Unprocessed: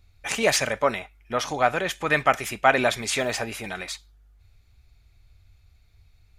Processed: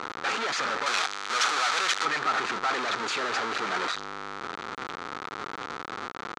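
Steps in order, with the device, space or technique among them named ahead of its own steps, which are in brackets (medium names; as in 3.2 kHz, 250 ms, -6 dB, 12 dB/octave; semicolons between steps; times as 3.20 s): local Wiener filter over 41 samples; home computer beeper (one-bit comparator; cabinet simulation 510–5700 Hz, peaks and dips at 610 Hz -10 dB, 1.3 kHz +10 dB, 2.8 kHz -5 dB, 5.2 kHz -5 dB); 0.86–2.05 s: tilt EQ +4 dB/octave; trim +3.5 dB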